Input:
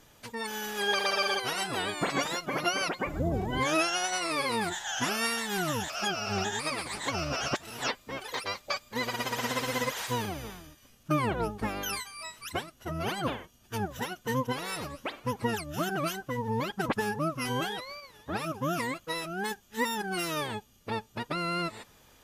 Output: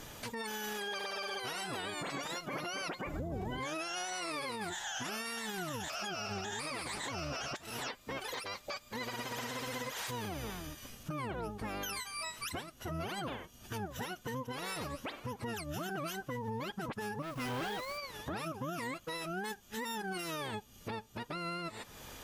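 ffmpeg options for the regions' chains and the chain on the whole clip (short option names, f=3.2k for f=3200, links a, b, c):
-filter_complex "[0:a]asettb=1/sr,asplit=3[a][b][c];[a]atrim=end=17.224[d];[b]atrim=start=17.22:end=17.98,asetpts=PTS-STARTPTS,afade=t=in:d=0.004:c=qsin,afade=t=out:st=0.756:d=0.004:c=qsin,highshelf=f=3.8k:g=-11.5,acrusher=bits=2:mode=log:mix=0:aa=0.000001,asoftclip=type=hard:threshold=-35.5dB[e];[c]atrim=start=17.976[f];[d][e]acrossfade=d=0.004:c1=hsin:c2=qsin[g];[g][f]acrossfade=d=0.004:c1=qsin:c2=hsin,acompressor=threshold=-49dB:ratio=3,alimiter=level_in=16dB:limit=-24dB:level=0:latency=1:release=25,volume=-16dB,volume=9.5dB"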